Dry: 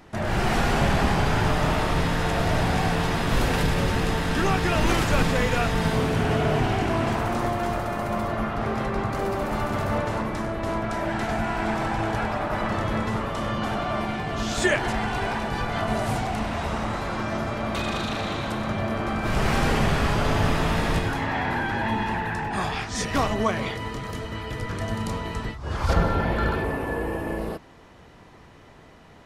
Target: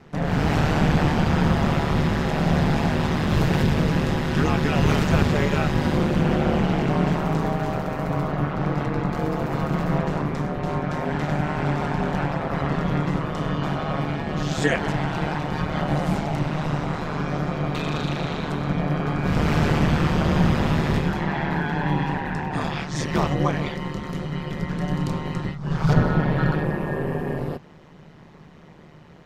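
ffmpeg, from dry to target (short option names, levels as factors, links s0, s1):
-af "aeval=exprs='val(0)*sin(2*PI*75*n/s)':c=same,equalizer=f=160:t=o:w=0.67:g=11,equalizer=f=400:t=o:w=0.67:g=3,equalizer=f=10000:t=o:w=0.67:g=-8,volume=1.19"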